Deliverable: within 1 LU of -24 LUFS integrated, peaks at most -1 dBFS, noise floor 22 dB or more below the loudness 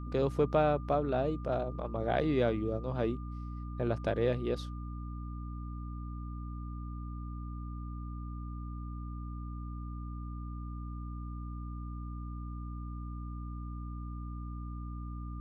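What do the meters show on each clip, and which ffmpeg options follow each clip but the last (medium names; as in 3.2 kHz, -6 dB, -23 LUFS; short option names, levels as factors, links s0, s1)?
hum 60 Hz; highest harmonic 300 Hz; hum level -38 dBFS; steady tone 1.2 kHz; tone level -51 dBFS; loudness -36.5 LUFS; peak level -14.5 dBFS; loudness target -24.0 LUFS
-> -af "bandreject=f=60:t=h:w=4,bandreject=f=120:t=h:w=4,bandreject=f=180:t=h:w=4,bandreject=f=240:t=h:w=4,bandreject=f=300:t=h:w=4"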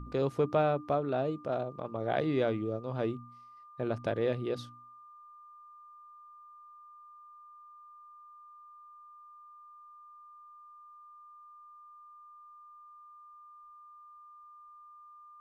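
hum not found; steady tone 1.2 kHz; tone level -51 dBFS
-> -af "bandreject=f=1200:w=30"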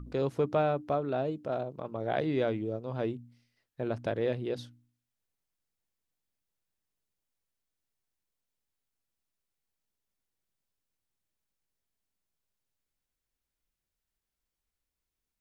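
steady tone not found; loudness -32.5 LUFS; peak level -15.5 dBFS; loudness target -24.0 LUFS
-> -af "volume=2.66"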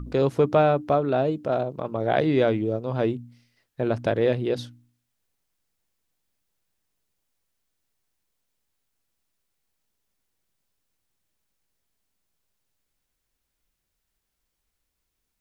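loudness -24.0 LUFS; peak level -7.0 dBFS; noise floor -80 dBFS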